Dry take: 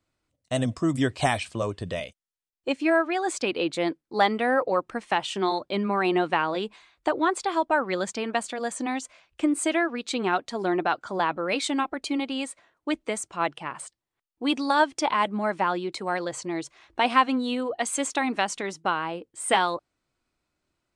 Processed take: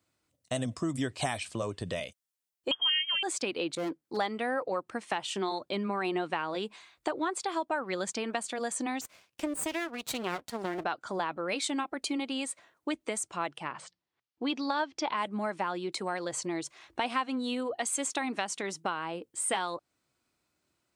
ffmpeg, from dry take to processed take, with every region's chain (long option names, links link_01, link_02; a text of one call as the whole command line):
ffmpeg -i in.wav -filter_complex "[0:a]asettb=1/sr,asplit=3[link_01][link_02][link_03];[link_01]atrim=end=2.714[link_04];[link_02]atrim=start=2.71:end=3.23,asetpts=PTS-STARTPTS,afade=type=in:duration=0.004:curve=qsin,afade=type=out:start_time=0.516:duration=0.004:curve=qsin,lowshelf=frequency=460:gain=10,lowpass=frequency=3000:width_type=q:width=0.5098,lowpass=frequency=3000:width_type=q:width=0.6013,lowpass=frequency=3000:width_type=q:width=0.9,lowpass=frequency=3000:width_type=q:width=2.563,afreqshift=-3500[link_05];[link_03]atrim=start=3.226[link_06];[link_04][link_05]acrossfade=duration=0.004:curve1=hsin:curve2=qsin[link_07];[link_07][link_06]acrossfade=duration=0.004:curve1=qsin:curve2=hsin,asettb=1/sr,asplit=3[link_08][link_09][link_10];[link_08]atrim=end=3.754[link_11];[link_09]atrim=start=3.75:end=4.17,asetpts=PTS-STARTPTS,afade=type=in:duration=0.004:curve=qsin,afade=type=out:start_time=0.416:duration=0.004:curve=qsin,asoftclip=type=hard:threshold=-26dB,adynamicequalizer=threshold=0.00562:dfrequency=1500:dqfactor=0.7:tfrequency=1500:tqfactor=0.7:attack=5:release=100:ratio=0.375:range=2.5:mode=cutabove:tftype=highshelf[link_12];[link_10]atrim=start=4.166[link_13];[link_11][link_12]acrossfade=duration=0.004:curve1=hsin:curve2=qsin[link_14];[link_14][link_13]acrossfade=duration=0.004:curve1=qsin:curve2=hsin,asettb=1/sr,asplit=3[link_15][link_16][link_17];[link_15]atrim=end=9.014[link_18];[link_16]atrim=start=9.01:end=10.84,asetpts=PTS-STARTPTS,afade=type=in:duration=0.004:curve=qsin,afade=type=out:start_time=1.826:duration=0.004:curve=qsin,highpass=frequency=120:width=0.5412,highpass=frequency=120:width=1.3066,aeval=exprs='max(val(0),0)':channel_layout=same[link_19];[link_17]atrim=start=10.836[link_20];[link_18][link_19]acrossfade=duration=0.004:curve1=hsin:curve2=qsin[link_21];[link_21][link_20]acrossfade=duration=0.004:curve1=qsin:curve2=hsin,asettb=1/sr,asplit=3[link_22][link_23][link_24];[link_22]atrim=end=13.704[link_25];[link_23]atrim=start=13.7:end=15.17,asetpts=PTS-STARTPTS,afade=type=in:duration=0.004:curve=qsin,afade=type=out:start_time=1.466:duration=0.004:curve=qsin,lowpass=frequency=5500:width=0.5412,lowpass=frequency=5500:width=1.3066,bandreject=frequency=60:width_type=h:width=6,bandreject=frequency=120:width_type=h:width=6,bandreject=frequency=180:width_type=h:width=6[link_26];[link_24]atrim=start=15.166[link_27];[link_25][link_26]acrossfade=duration=0.004:curve1=hsin:curve2=qsin[link_28];[link_28][link_27]acrossfade=duration=0.004:curve1=qsin:curve2=hsin,highpass=80,highshelf=frequency=6100:gain=7.5,acompressor=threshold=-32dB:ratio=2.5" out.wav